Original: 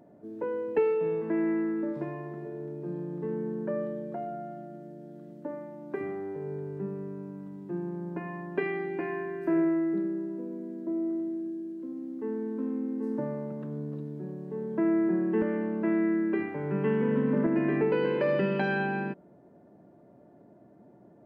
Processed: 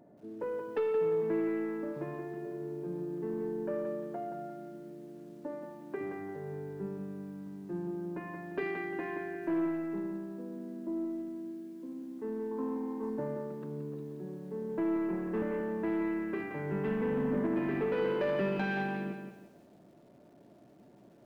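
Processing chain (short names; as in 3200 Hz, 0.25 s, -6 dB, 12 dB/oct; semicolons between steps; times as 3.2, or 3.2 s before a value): soft clip -22.5 dBFS, distortion -16 dB; 12.51–13.1 bell 990 Hz +14 dB 0.6 oct; lo-fi delay 0.175 s, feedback 35%, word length 10-bit, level -7 dB; gain -3 dB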